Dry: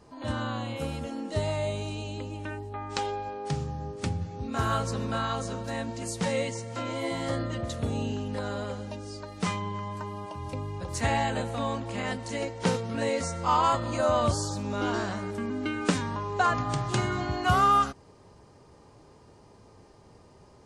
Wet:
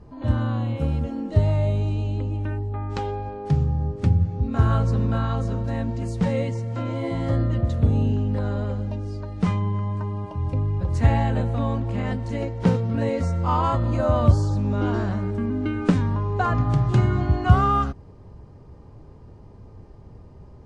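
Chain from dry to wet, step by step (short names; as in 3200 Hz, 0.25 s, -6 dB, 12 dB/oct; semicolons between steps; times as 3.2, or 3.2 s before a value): RIAA curve playback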